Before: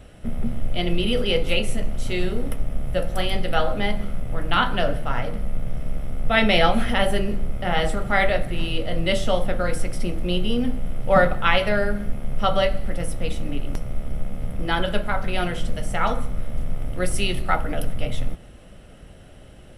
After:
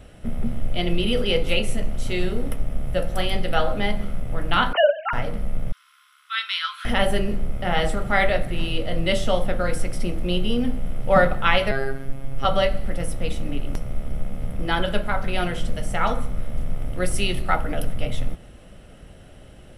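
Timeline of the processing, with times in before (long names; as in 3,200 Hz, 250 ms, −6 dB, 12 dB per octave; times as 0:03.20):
0:04.73–0:05.13: three sine waves on the formant tracks
0:05.72–0:06.85: Chebyshev high-pass with heavy ripple 1,000 Hz, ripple 9 dB
0:11.71–0:12.45: phases set to zero 135 Hz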